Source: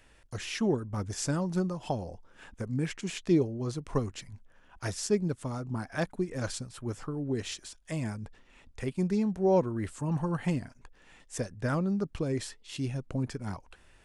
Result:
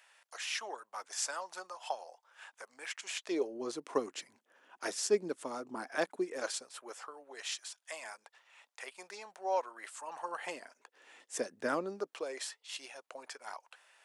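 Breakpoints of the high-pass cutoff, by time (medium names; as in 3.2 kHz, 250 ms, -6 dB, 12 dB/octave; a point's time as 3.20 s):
high-pass 24 dB/octave
3.03 s 710 Hz
3.61 s 310 Hz
6.14 s 310 Hz
7.25 s 680 Hz
10.00 s 680 Hz
11.59 s 260 Hz
12.47 s 620 Hz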